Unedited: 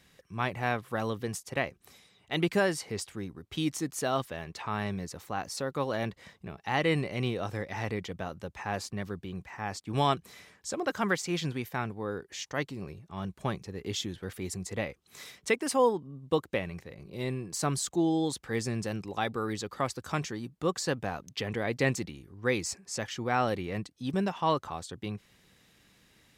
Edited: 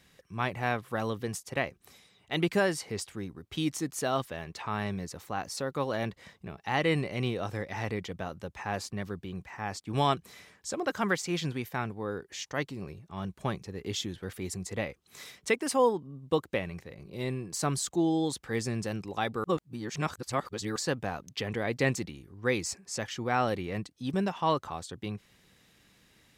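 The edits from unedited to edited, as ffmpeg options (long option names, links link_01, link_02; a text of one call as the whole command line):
ffmpeg -i in.wav -filter_complex "[0:a]asplit=3[link_01][link_02][link_03];[link_01]atrim=end=19.442[link_04];[link_02]atrim=start=19.438:end=20.762,asetpts=PTS-STARTPTS,areverse[link_05];[link_03]atrim=start=20.758[link_06];[link_04][link_05]acrossfade=duration=0.004:curve1=hsin:curve2=hsin[link_07];[link_07][link_06]acrossfade=duration=0.004:curve1=hsin:curve2=hsin" out.wav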